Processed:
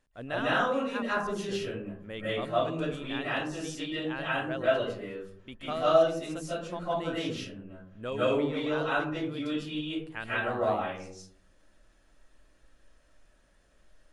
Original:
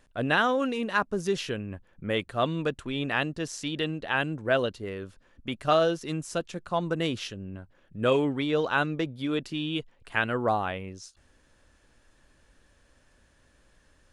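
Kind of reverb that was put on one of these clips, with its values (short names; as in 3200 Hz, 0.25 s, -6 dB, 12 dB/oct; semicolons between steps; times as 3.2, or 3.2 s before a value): digital reverb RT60 0.6 s, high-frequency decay 0.4×, pre-delay 0.115 s, DRR -9.5 dB; gain -12.5 dB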